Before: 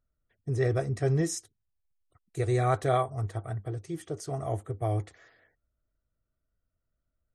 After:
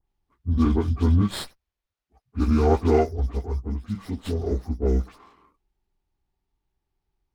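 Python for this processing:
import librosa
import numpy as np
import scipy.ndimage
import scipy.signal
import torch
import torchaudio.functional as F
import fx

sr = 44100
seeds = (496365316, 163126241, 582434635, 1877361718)

y = fx.pitch_bins(x, sr, semitones=-8.5)
y = fx.dispersion(y, sr, late='highs', ms=77.0, hz=2900.0)
y = fx.running_max(y, sr, window=5)
y = y * 10.0 ** (8.0 / 20.0)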